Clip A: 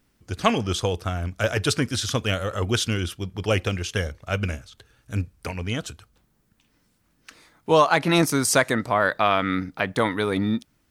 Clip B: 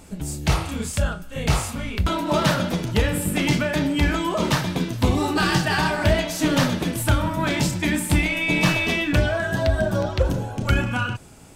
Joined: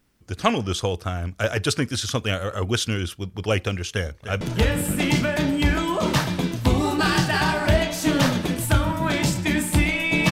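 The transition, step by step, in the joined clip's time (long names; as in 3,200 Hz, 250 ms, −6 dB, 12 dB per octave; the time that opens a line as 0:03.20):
clip A
0:03.93–0:04.41: delay throw 300 ms, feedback 60%, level −11 dB
0:04.41: continue with clip B from 0:02.78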